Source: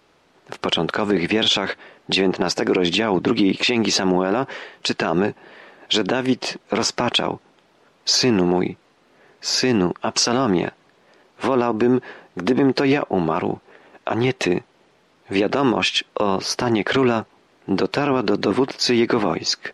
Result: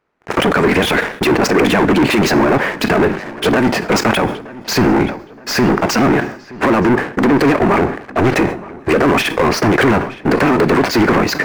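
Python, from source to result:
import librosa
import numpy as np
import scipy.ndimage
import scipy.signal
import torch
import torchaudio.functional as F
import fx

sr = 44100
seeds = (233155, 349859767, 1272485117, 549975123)

y = fx.stretch_grains(x, sr, factor=0.58, grain_ms=21.0)
y = fx.leveller(y, sr, passes=5)
y = fx.high_shelf_res(y, sr, hz=2600.0, db=-7.5, q=1.5)
y = fx.echo_filtered(y, sr, ms=922, feedback_pct=47, hz=2700.0, wet_db=-19.0)
y = fx.rev_double_slope(y, sr, seeds[0], early_s=0.53, late_s=2.4, knee_db=-19, drr_db=16.0)
y = fx.sustainer(y, sr, db_per_s=110.0)
y = y * librosa.db_to_amplitude(-1.0)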